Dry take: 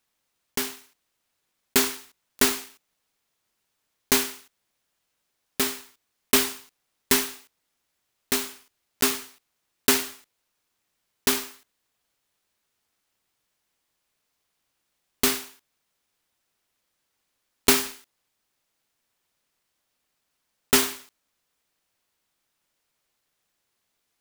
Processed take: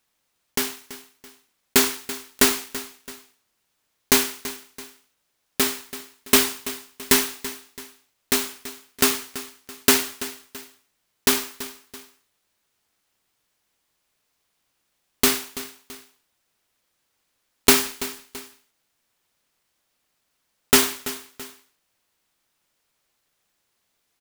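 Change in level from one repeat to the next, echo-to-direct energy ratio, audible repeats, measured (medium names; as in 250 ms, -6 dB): -7.5 dB, -14.5 dB, 2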